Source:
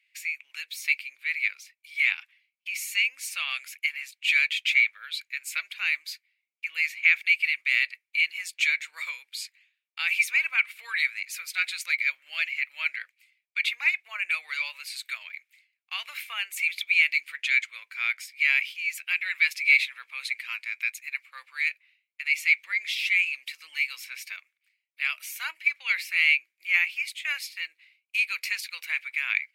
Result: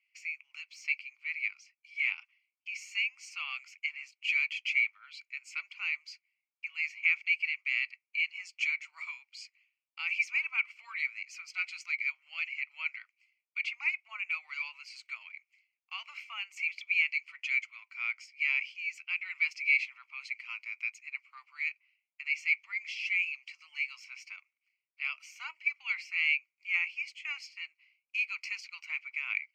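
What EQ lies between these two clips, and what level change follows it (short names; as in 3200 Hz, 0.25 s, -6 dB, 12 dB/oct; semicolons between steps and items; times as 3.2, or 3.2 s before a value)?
BPF 510–4800 Hz; bell 2600 Hz -3 dB 1.8 oct; fixed phaser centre 2500 Hz, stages 8; -3.0 dB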